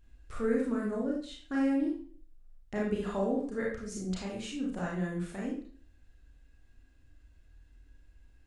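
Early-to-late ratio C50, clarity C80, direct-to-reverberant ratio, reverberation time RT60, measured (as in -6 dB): 2.5 dB, 7.5 dB, -4.0 dB, 0.45 s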